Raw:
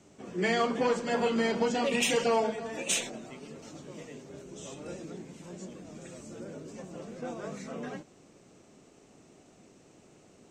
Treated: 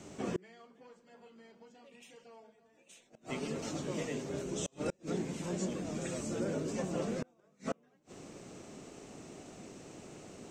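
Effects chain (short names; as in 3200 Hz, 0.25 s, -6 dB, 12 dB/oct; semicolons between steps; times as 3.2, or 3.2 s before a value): flipped gate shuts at -31 dBFS, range -37 dB; gain +7.5 dB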